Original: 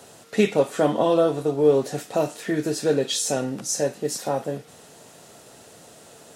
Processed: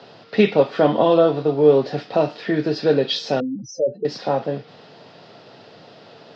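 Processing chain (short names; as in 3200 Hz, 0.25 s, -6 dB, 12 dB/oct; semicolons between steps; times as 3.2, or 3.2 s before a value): 3.4–4.05 spectral contrast raised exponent 3.6; Chebyshev band-pass 100–5000 Hz, order 5; gain +4.5 dB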